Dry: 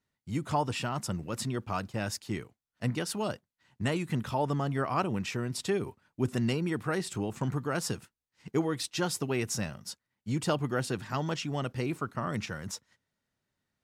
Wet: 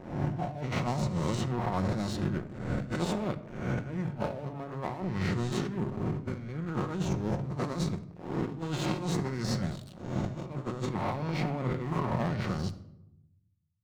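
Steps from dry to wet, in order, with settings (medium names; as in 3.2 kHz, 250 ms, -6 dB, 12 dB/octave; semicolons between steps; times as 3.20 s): reverse spectral sustain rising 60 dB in 1.10 s; tilt EQ -4 dB/octave; crossover distortion -33.5 dBFS; formant shift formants -4 st; bass shelf 190 Hz -11.5 dB; compressor with a negative ratio -32 dBFS, ratio -0.5; reverberation RT60 0.85 s, pre-delay 6 ms, DRR 9 dB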